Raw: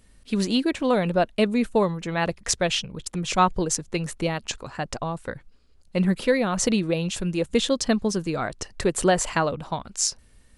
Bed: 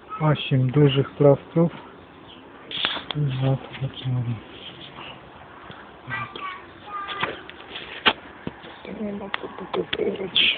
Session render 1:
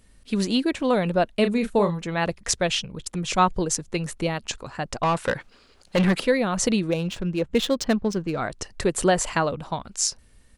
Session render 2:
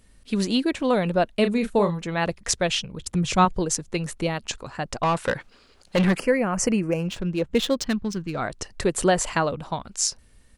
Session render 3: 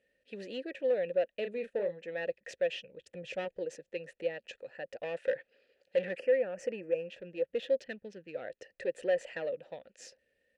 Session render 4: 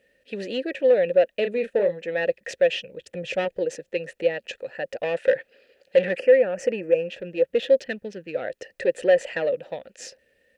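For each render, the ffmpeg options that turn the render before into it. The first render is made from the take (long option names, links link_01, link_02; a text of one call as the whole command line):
ffmpeg -i in.wav -filter_complex "[0:a]asplit=3[link_01][link_02][link_03];[link_01]afade=type=out:start_time=1.43:duration=0.02[link_04];[link_02]asplit=2[link_05][link_06];[link_06]adelay=35,volume=-8dB[link_07];[link_05][link_07]amix=inputs=2:normalize=0,afade=type=in:start_time=1.43:duration=0.02,afade=type=out:start_time=1.99:duration=0.02[link_08];[link_03]afade=type=in:start_time=1.99:duration=0.02[link_09];[link_04][link_08][link_09]amix=inputs=3:normalize=0,asettb=1/sr,asplit=3[link_10][link_11][link_12];[link_10]atrim=end=5.034[link_13];[link_11]atrim=start=5.03:end=6.2,asetpts=PTS-STARTPTS,afade=type=in:duration=0.004:curve=qsin,afade=type=out:start_time=1.166:duration=0.004:curve=qsin,asplit=2[link_14][link_15];[link_15]highpass=frequency=720:poles=1,volume=24dB,asoftclip=type=tanh:threshold=-12.5dB[link_16];[link_14][link_16]amix=inputs=2:normalize=0,lowpass=frequency=3700:poles=1,volume=-6dB[link_17];[link_12]atrim=start=6.196[link_18];[link_13][link_17]acrossfade=duration=0.004:curve1=hsin:curve2=qsin[link_19];[link_19][link_18]acrossfade=duration=0.004:curve1=qsin:curve2=hsin,asettb=1/sr,asplit=3[link_20][link_21][link_22];[link_20]atrim=end=6.904[link_23];[link_21]atrim=start=6.9:end=8.38,asetpts=PTS-STARTPTS,afade=type=in:duration=0.004:curve=qsin,afade=type=out:start_time=1.476:duration=0.004:curve=qsin,adynamicsmooth=sensitivity=4:basefreq=2000[link_24];[link_22]atrim=start=8.376[link_25];[link_23][link_24]acrossfade=duration=0.004:curve1=hsin:curve2=qsin[link_26];[link_26][link_25]acrossfade=duration=0.004:curve1=qsin:curve2=hsin" out.wav
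ffmpeg -i in.wav -filter_complex "[0:a]asettb=1/sr,asplit=3[link_01][link_02][link_03];[link_01]atrim=end=3.014[link_04];[link_02]atrim=start=3.01:end=3.45,asetpts=PTS-STARTPTS,afade=type=in:duration=0.004:curve=qsin,afade=type=out:start_time=0.436:duration=0.004:curve=qsin,equalizer=frequency=94:width_type=o:width=1.7:gain=12.5[link_05];[link_03]atrim=start=3.446[link_06];[link_04][link_05]acrossfade=duration=0.004:curve1=hsin:curve2=qsin[link_07];[link_07][link_06]acrossfade=duration=0.004:curve1=qsin:curve2=hsin,asettb=1/sr,asplit=3[link_08][link_09][link_10];[link_08]atrim=end=6.174[link_11];[link_09]atrim=start=6.17:end=7.08,asetpts=PTS-STARTPTS,afade=type=in:duration=0.004:curve=qsin,afade=type=out:start_time=0.906:duration=0.004:curve=qsin,asuperstop=centerf=3700:order=4:qfactor=1.7[link_12];[link_10]atrim=start=7.076[link_13];[link_11][link_12]acrossfade=duration=0.004:curve1=hsin:curve2=qsin[link_14];[link_14][link_13]acrossfade=duration=0.004:curve1=qsin:curve2=hsin,asettb=1/sr,asplit=3[link_15][link_16][link_17];[link_15]atrim=end=7.844[link_18];[link_16]atrim=start=7.84:end=8.35,asetpts=PTS-STARTPTS,afade=type=in:duration=0.004:curve=qsin,afade=type=out:start_time=0.506:duration=0.004:curve=qsin,equalizer=frequency=580:width=1.1:gain=-12[link_19];[link_17]atrim=start=8.346[link_20];[link_18][link_19]acrossfade=duration=0.004:curve1=hsin:curve2=qsin[link_21];[link_21][link_20]acrossfade=duration=0.004:curve1=qsin:curve2=hsin" out.wav
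ffmpeg -i in.wav -filter_complex "[0:a]aeval=exprs='(tanh(6.31*val(0)+0.25)-tanh(0.25))/6.31':channel_layout=same,asplit=3[link_01][link_02][link_03];[link_01]bandpass=frequency=530:width_type=q:width=8,volume=0dB[link_04];[link_02]bandpass=frequency=1840:width_type=q:width=8,volume=-6dB[link_05];[link_03]bandpass=frequency=2480:width_type=q:width=8,volume=-9dB[link_06];[link_04][link_05][link_06]amix=inputs=3:normalize=0" out.wav
ffmpeg -i in.wav -af "volume=11.5dB" out.wav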